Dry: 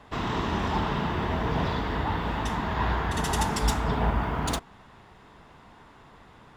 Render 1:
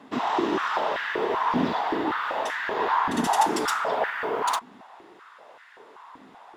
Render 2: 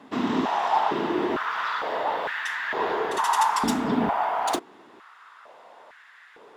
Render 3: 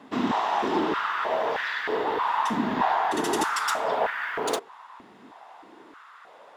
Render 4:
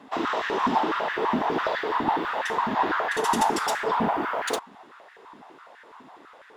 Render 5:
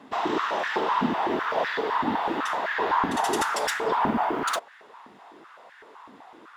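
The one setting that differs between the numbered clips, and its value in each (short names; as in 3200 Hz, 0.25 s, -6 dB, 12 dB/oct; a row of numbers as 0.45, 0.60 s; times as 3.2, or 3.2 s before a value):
stepped high-pass, rate: 5.2, 2.2, 3.2, 12, 7.9 Hz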